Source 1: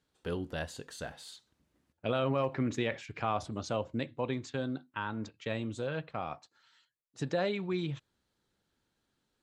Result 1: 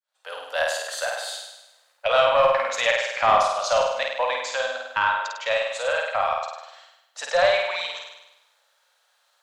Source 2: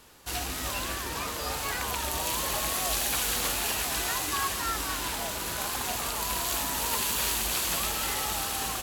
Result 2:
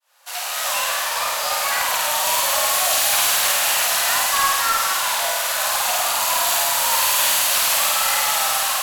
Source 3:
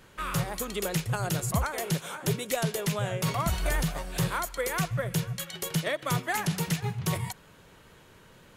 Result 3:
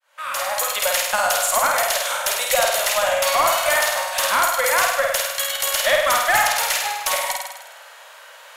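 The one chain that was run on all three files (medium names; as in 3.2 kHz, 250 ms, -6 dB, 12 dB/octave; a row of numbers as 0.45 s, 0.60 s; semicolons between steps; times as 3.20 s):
fade-in on the opening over 0.64 s; elliptic high-pass 560 Hz, stop band 40 dB; flutter echo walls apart 8.7 m, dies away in 0.96 s; Chebyshev shaper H 4 -20 dB, 5 -19 dB, 8 -44 dB, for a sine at -12.5 dBFS; peak normalisation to -6 dBFS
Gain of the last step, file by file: +10.5 dB, +6.0 dB, +9.0 dB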